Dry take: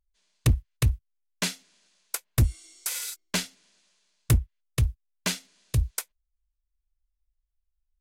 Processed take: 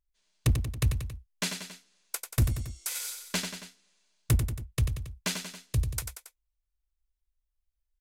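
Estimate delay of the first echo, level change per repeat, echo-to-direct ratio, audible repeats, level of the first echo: 92 ms, -4.5 dB, -5.5 dB, 3, -7.0 dB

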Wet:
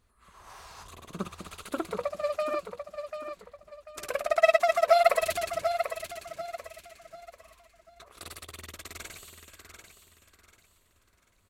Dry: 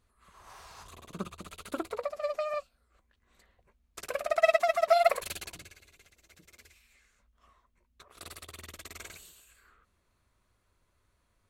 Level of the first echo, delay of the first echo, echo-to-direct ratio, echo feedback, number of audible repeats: -8.0 dB, 741 ms, -7.5 dB, 33%, 3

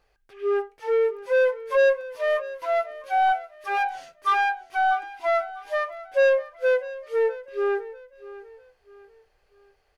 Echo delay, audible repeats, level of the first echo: 648 ms, 3, -17.0 dB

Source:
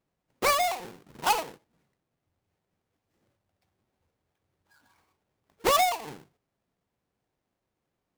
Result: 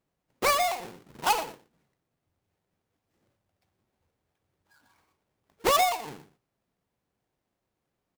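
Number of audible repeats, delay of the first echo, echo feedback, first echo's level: 1, 119 ms, no regular repeats, -17.0 dB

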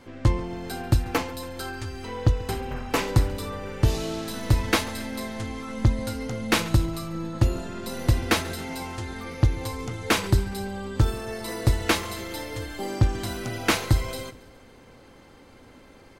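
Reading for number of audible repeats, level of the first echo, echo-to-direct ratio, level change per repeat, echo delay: 3, -20.5 dB, -19.0 dB, -5.5 dB, 138 ms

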